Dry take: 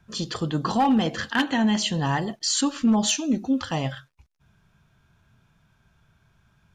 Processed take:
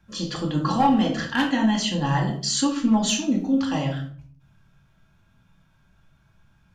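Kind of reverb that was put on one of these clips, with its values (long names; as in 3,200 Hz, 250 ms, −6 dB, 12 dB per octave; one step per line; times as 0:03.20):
rectangular room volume 530 cubic metres, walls furnished, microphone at 2.3 metres
level −3 dB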